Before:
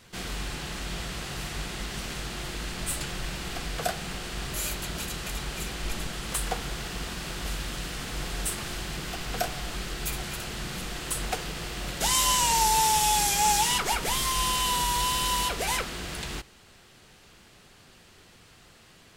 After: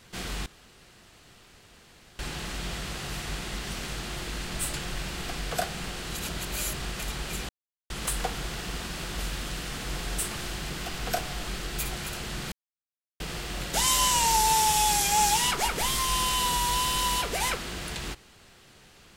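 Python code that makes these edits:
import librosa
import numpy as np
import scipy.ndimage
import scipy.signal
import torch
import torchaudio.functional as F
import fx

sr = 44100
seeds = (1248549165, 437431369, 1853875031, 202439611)

y = fx.edit(x, sr, fx.insert_room_tone(at_s=0.46, length_s=1.73),
    fx.reverse_span(start_s=4.33, length_s=0.88),
    fx.silence(start_s=5.76, length_s=0.41),
    fx.silence(start_s=10.79, length_s=0.68), tone=tone)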